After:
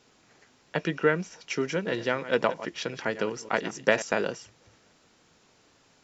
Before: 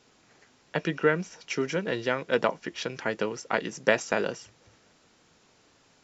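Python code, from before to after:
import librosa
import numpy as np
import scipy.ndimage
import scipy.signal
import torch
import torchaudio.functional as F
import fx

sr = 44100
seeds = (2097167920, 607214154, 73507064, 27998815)

y = fx.reverse_delay(x, sr, ms=118, wet_db=-13.5, at=(1.72, 4.02))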